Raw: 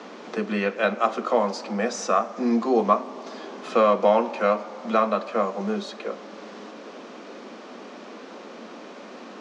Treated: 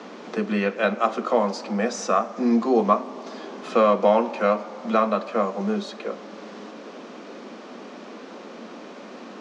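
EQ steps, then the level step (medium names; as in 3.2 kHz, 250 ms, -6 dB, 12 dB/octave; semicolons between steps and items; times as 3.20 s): bass shelf 180 Hz +6.5 dB; 0.0 dB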